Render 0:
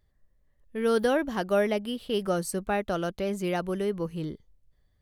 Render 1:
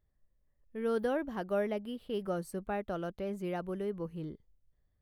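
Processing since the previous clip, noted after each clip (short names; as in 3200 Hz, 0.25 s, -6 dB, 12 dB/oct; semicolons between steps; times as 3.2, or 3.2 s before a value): bell 6500 Hz -10 dB 2.5 oct; gain -7 dB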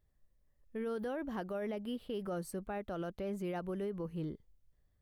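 limiter -32 dBFS, peak gain reduction 11 dB; gain +1.5 dB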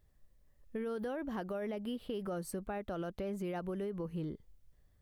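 compressor 2.5:1, threshold -44 dBFS, peak gain reduction 6.5 dB; gain +6 dB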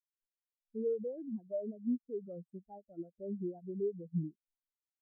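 spectral expander 4:1; gain +1 dB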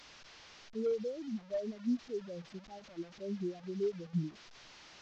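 delta modulation 32 kbps, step -50 dBFS; gain +1 dB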